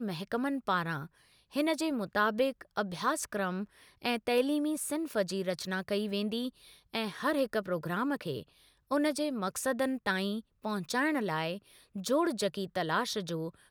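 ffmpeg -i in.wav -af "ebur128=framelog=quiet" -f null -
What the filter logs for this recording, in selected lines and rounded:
Integrated loudness:
  I:         -32.7 LUFS
  Threshold: -43.0 LUFS
Loudness range:
  LRA:         1.7 LU
  Threshold: -52.9 LUFS
  LRA low:   -33.8 LUFS
  LRA high:  -32.1 LUFS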